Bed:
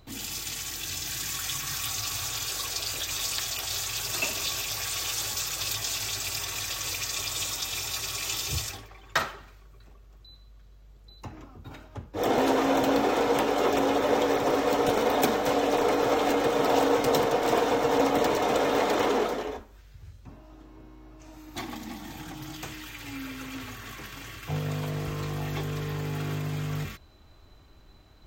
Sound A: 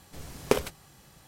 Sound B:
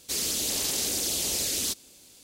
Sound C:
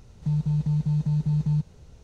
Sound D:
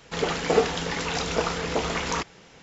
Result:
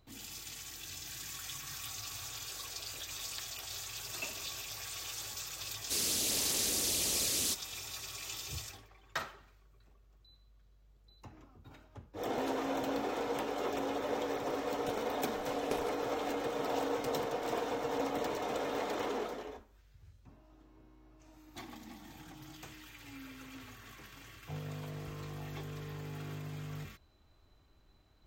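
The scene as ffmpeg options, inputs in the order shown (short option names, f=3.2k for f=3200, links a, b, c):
-filter_complex "[0:a]volume=-11.5dB[a];[2:a]atrim=end=2.23,asetpts=PTS-STARTPTS,volume=-4.5dB,afade=t=in:d=0.004:c=hsin,afade=t=out:st=2.226:d=0.004:c=hsin,adelay=256221S[b];[1:a]atrim=end=1.27,asetpts=PTS-STARTPTS,volume=-14.5dB,afade=t=in:d=0.004:c=hsin,afade=t=out:st=1.266:d=0.004:c=hsin,adelay=15200[c];[a][b][c]amix=inputs=3:normalize=0"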